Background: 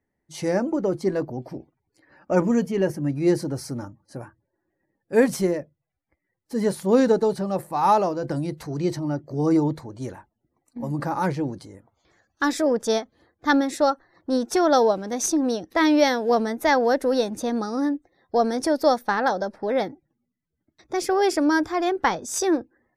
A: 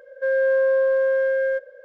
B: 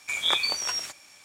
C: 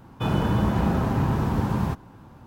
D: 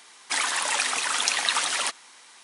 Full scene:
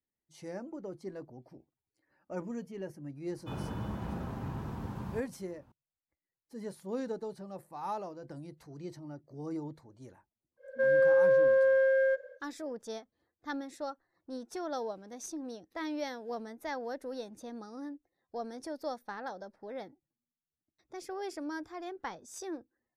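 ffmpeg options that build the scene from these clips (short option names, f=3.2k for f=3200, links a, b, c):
-filter_complex "[0:a]volume=-18.5dB[a];[3:a]atrim=end=2.46,asetpts=PTS-STARTPTS,volume=-15.5dB,afade=t=in:d=0.004:c=hsin,afade=t=out:st=2.456:d=0.004:c=hsin,adelay=3260[b];[1:a]atrim=end=1.84,asetpts=PTS-STARTPTS,volume=-4.5dB,afade=t=in:d=0.1,afade=t=out:st=1.74:d=0.1,adelay=10570[c];[a][b][c]amix=inputs=3:normalize=0"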